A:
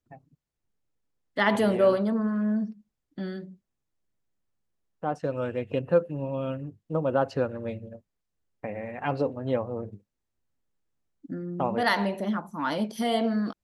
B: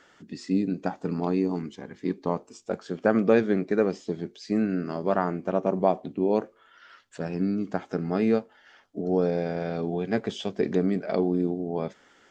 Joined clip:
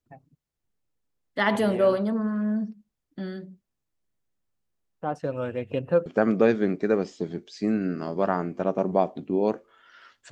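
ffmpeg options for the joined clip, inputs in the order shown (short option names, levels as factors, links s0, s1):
-filter_complex "[0:a]apad=whole_dur=10.31,atrim=end=10.31,atrim=end=6.062[s0];[1:a]atrim=start=2.938:end=7.19[s1];[s0][s1]acrossfade=d=0.004:c1=hsin:c2=hsin"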